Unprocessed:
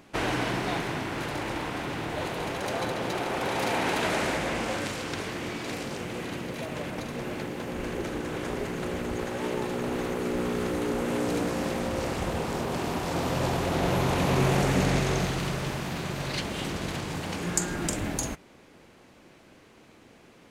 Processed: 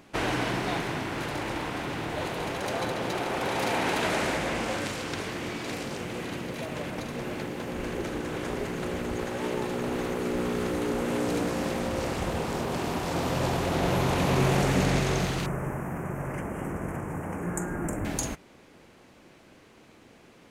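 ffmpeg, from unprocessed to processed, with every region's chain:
ffmpeg -i in.wav -filter_complex "[0:a]asettb=1/sr,asplit=3[link_01][link_02][link_03];[link_01]atrim=end=15.464[link_04];[link_02]atrim=start=15.46:end=18.05,asetpts=PTS-STARTPTS,afade=type=in:duration=0.004:curve=qsin,afade=type=out:start_time=2.586:duration=0.004:curve=qsin,asuperstop=centerf=4000:order=4:qfactor=0.58,bass=frequency=250:gain=0,treble=frequency=4000:gain=-4[link_05];[link_03]atrim=start=18.046[link_06];[link_04][link_05]acrossfade=duration=0.004:curve1=hsin:curve2=qsin[link_07];[link_07][link_06]acrossfade=duration=0.004:curve1=qsin:curve2=hsin" out.wav

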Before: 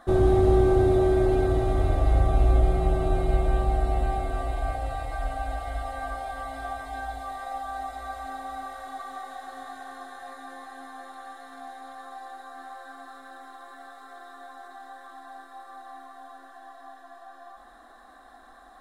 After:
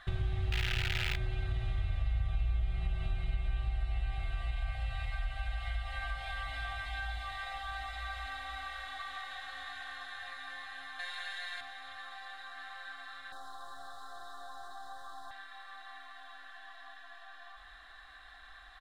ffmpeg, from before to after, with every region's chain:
ffmpeg -i in.wav -filter_complex "[0:a]asettb=1/sr,asplit=3[link_01][link_02][link_03];[link_01]atrim=end=0.524[link_04];[link_02]atrim=start=0.52:end=1.17,asetpts=PTS-STARTPTS,afade=type=in:duration=0.004:curve=qsin,afade=type=out:start_time=0.646:duration=0.004:curve=qsin,acrusher=bits=4:dc=4:mix=0:aa=0.000001,asuperstop=centerf=1100:order=12:qfactor=6.7[link_05];[link_03]atrim=start=1.166[link_06];[link_04][link_05]acrossfade=duration=0.004:curve1=hsin:curve2=qsin[link_07];[link_07][link_06]acrossfade=duration=0.004:curve1=qsin:curve2=hsin,asettb=1/sr,asplit=3[link_08][link_09][link_10];[link_08]atrim=end=10.994[link_11];[link_09]atrim=start=10.99:end=11.61,asetpts=PTS-STARTPTS,afade=type=in:duration=0.004:curve=qsin,afade=type=out:start_time=0.616:duration=0.004:curve=qsin,equalizer=frequency=6500:width=0.34:gain=7.5,aecho=1:1:5.6:0.66,atrim=end_sample=27342[link_12];[link_10]atrim=start=11.606[link_13];[link_11][link_12]acrossfade=duration=0.004:curve1=hsin:curve2=qsin[link_14];[link_14][link_13]acrossfade=duration=0.004:curve1=qsin:curve2=hsin,asettb=1/sr,asplit=3[link_15][link_16][link_17];[link_15]atrim=end=13.324[link_18];[link_16]atrim=start=13.32:end=15.31,asetpts=PTS-STARTPTS,afade=type=in:duration=0.004:curve=qsin,afade=type=out:start_time=1.986:duration=0.004:curve=qsin,aeval=exprs='val(0)+0.5*0.00106*sgn(val(0))':channel_layout=same,asuperstop=centerf=2400:order=4:qfactor=0.59,acontrast=74[link_19];[link_17]atrim=start=15.306[link_20];[link_18][link_19]acrossfade=duration=0.004:curve1=hsin:curve2=qsin[link_21];[link_21][link_20]acrossfade=duration=0.004:curve1=qsin:curve2=hsin,firequalizer=gain_entry='entry(150,0);entry(210,-23);entry(1700,1);entry(2700,9);entry(5600,-6);entry(9900,-13)':delay=0.05:min_phase=1,acompressor=threshold=-37dB:ratio=3,volume=3dB" out.wav

